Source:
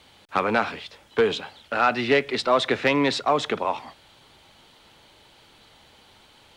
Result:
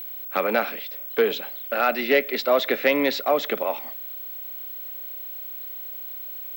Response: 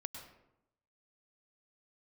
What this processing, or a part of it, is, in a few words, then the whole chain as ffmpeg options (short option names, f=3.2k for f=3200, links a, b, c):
old television with a line whistle: -af "highpass=f=200:w=0.5412,highpass=f=200:w=1.3066,equalizer=f=570:t=q:w=4:g=7,equalizer=f=980:t=q:w=4:g=-7,equalizer=f=2.1k:t=q:w=4:g=4,lowpass=f=7k:w=0.5412,lowpass=f=7k:w=1.3066,aeval=exprs='val(0)+0.0282*sin(2*PI*15734*n/s)':c=same,volume=-1.5dB"